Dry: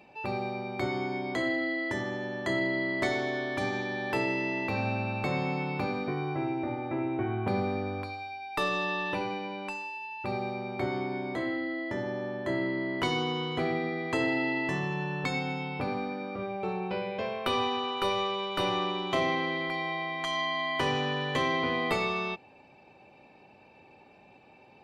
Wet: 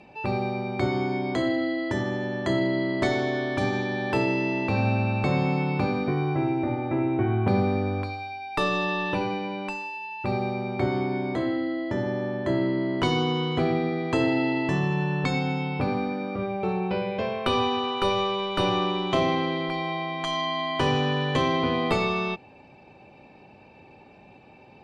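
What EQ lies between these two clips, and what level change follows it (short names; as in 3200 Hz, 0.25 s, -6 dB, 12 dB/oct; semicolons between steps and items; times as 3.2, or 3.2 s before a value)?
LPF 8500 Hz 12 dB/oct; low shelf 260 Hz +7 dB; dynamic EQ 2000 Hz, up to -7 dB, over -49 dBFS, Q 7.6; +3.5 dB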